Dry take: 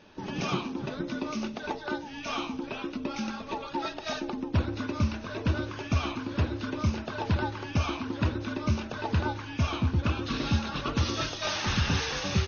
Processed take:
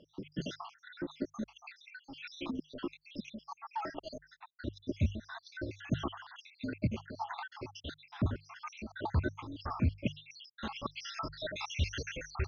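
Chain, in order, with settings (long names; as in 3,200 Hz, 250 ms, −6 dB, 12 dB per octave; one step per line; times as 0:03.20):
time-frequency cells dropped at random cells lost 77%
high-frequency loss of the air 74 metres
mains-hum notches 50/100/150 Hz
level −1.5 dB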